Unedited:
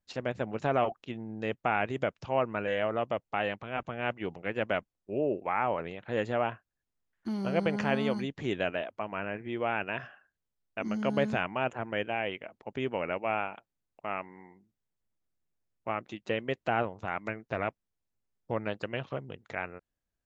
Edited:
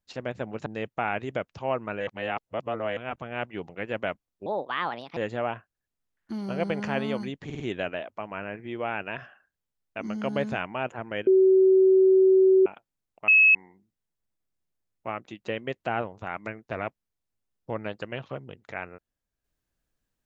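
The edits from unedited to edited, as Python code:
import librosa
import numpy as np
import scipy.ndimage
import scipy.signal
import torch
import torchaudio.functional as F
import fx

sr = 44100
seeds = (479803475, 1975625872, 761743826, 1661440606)

y = fx.edit(x, sr, fx.cut(start_s=0.66, length_s=0.67),
    fx.reverse_span(start_s=2.74, length_s=0.9),
    fx.speed_span(start_s=5.13, length_s=1.0, speed=1.41),
    fx.stutter(start_s=8.41, slice_s=0.05, count=4),
    fx.bleep(start_s=12.08, length_s=1.39, hz=379.0, db=-14.5),
    fx.bleep(start_s=14.09, length_s=0.27, hz=2580.0, db=-13.5), tone=tone)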